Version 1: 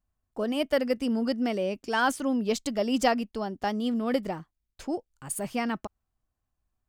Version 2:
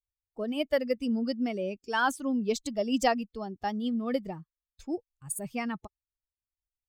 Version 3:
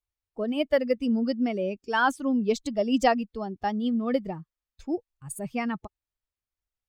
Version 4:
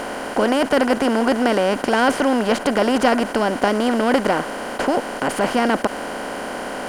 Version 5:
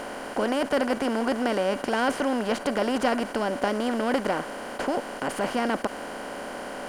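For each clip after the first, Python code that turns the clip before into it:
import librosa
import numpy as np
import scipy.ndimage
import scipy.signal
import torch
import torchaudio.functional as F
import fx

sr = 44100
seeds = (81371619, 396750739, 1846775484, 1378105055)

y1 = fx.bin_expand(x, sr, power=1.5)
y2 = fx.high_shelf(y1, sr, hz=5000.0, db=-9.5)
y2 = y2 * librosa.db_to_amplitude(4.0)
y3 = fx.bin_compress(y2, sr, power=0.2)
y4 = fx.comb_fb(y3, sr, f0_hz=570.0, decay_s=0.57, harmonics='all', damping=0.0, mix_pct=60)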